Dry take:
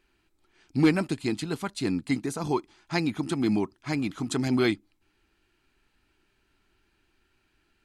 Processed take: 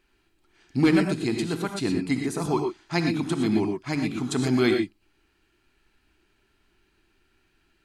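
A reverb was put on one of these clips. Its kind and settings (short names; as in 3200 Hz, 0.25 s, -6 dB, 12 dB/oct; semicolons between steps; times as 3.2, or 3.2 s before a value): non-linear reverb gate 0.14 s rising, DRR 4 dB; gain +1 dB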